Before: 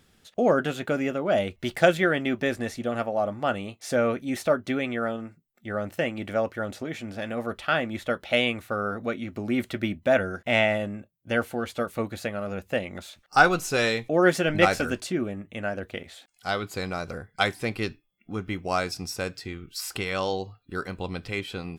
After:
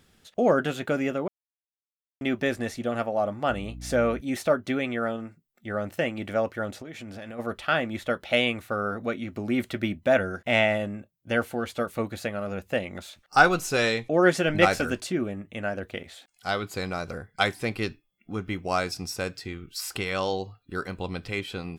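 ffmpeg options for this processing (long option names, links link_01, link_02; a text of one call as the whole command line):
ffmpeg -i in.wav -filter_complex "[0:a]asettb=1/sr,asplit=3[link_01][link_02][link_03];[link_01]atrim=end=3.504[link_04];[link_02]atrim=start=3.5:end=4.21,asetpts=PTS-STARTPTS,afade=type=in:duration=0.004:curve=qsin,afade=type=out:start_time=0.706:duration=0.004:curve=qsin,aeval=exprs='val(0)+0.0126*(sin(2*PI*60*n/s)+sin(2*PI*2*60*n/s)/2+sin(2*PI*3*60*n/s)/3+sin(2*PI*4*60*n/s)/4+sin(2*PI*5*60*n/s)/5)':channel_layout=same[link_05];[link_03]atrim=start=4.206[link_06];[link_04][link_05]acrossfade=duration=0.004:curve1=hsin:curve2=qsin[link_07];[link_07][link_06]acrossfade=duration=0.004:curve1=qsin:curve2=hsin,asplit=3[link_08][link_09][link_10];[link_08]afade=type=out:start_time=6.7:duration=0.02[link_11];[link_09]acompressor=threshold=-36dB:ratio=6:attack=3.2:release=140:knee=1:detection=peak,afade=type=in:start_time=6.7:duration=0.02,afade=type=out:start_time=7.38:duration=0.02[link_12];[link_10]afade=type=in:start_time=7.38:duration=0.02[link_13];[link_11][link_12][link_13]amix=inputs=3:normalize=0,asettb=1/sr,asplit=3[link_14][link_15][link_16];[link_14]atrim=end=13.784[link_17];[link_15]atrim=start=13.78:end=14.38,asetpts=PTS-STARTPTS,afade=type=in:duration=0.004:curve=qsin,afade=type=out:start_time=0.596:duration=0.004:curve=qsin,lowpass=11000[link_18];[link_16]atrim=start=14.376[link_19];[link_17][link_18]acrossfade=duration=0.004:curve1=hsin:curve2=qsin[link_20];[link_20][link_19]acrossfade=duration=0.004:curve1=qsin:curve2=hsin,asplit=3[link_21][link_22][link_23];[link_21]atrim=end=1.28,asetpts=PTS-STARTPTS,afade=type=out:start_time=1.276:duration=0.004:curve=hsin[link_24];[link_22]atrim=start=1.28:end=2.21,asetpts=PTS-STARTPTS,volume=0[link_25];[link_23]atrim=start=2.21,asetpts=PTS-STARTPTS,afade=type=in:duration=0.004:curve=hsin[link_26];[link_24][link_25][link_26]concat=n=3:v=0:a=1" out.wav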